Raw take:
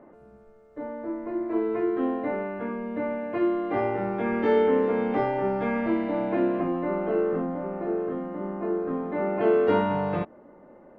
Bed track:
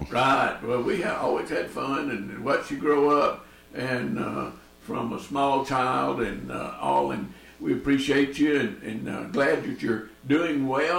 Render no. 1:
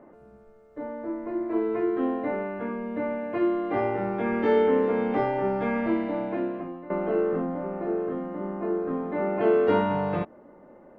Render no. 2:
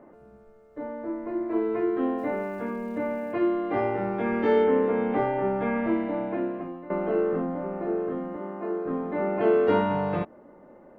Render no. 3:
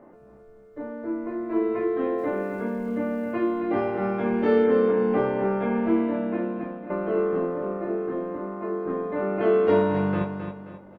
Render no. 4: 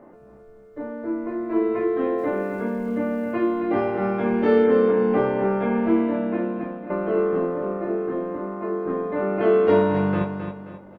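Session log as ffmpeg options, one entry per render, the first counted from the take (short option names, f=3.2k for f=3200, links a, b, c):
-filter_complex "[0:a]asplit=2[a][b];[a]atrim=end=6.9,asetpts=PTS-STARTPTS,afade=t=out:st=5.93:d=0.97:silence=0.16788[c];[b]atrim=start=6.9,asetpts=PTS-STARTPTS,afade=t=in:d=0.004:c=hsin:silence=0.16788[d];[c][d]concat=n=2:v=0:a=1"
-filter_complex "[0:a]asplit=3[a][b][c];[a]afade=t=out:st=2.17:d=0.02[d];[b]aeval=exprs='val(0)*gte(abs(val(0)),0.00251)':c=same,afade=t=in:st=2.17:d=0.02,afade=t=out:st=3.32:d=0.02[e];[c]afade=t=in:st=3.32:d=0.02[f];[d][e][f]amix=inputs=3:normalize=0,asettb=1/sr,asplit=3[g][h][i];[g]atrim=end=4.644[j];[h]atrim=start=4.64:end=6.61,asetpts=PTS-STARTPTS,afade=t=in:d=0.004:c=qsin,afade=t=out:st=1.966:d=0.004:c=qsin,lowpass=3.1k[k];[i]atrim=start=6.606[l];[j][k]acrossfade=d=0.004:c1=hsin:c2=qsin[m];[m][l]acrossfade=d=0.004:c1=qsin:c2=hsin,asettb=1/sr,asplit=3[n][o][p];[n]atrim=end=8.364[q];[o]atrim=start=8.36:end=8.86,asetpts=PTS-STARTPTS,afade=t=in:d=0.004:c=qsin,afade=t=out:st=0.496:d=0.004:c=qsin,highpass=f=330:p=1[r];[p]atrim=start=8.856[s];[q][r]acrossfade=d=0.004:c1=hsin:c2=qsin[t];[t][s]acrossfade=d=0.004:c1=qsin:c2=hsin"
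-filter_complex "[0:a]asplit=2[a][b];[b]adelay=21,volume=-6.5dB[c];[a][c]amix=inputs=2:normalize=0,aecho=1:1:266|532|798|1064:0.422|0.152|0.0547|0.0197"
-af "volume=2.5dB"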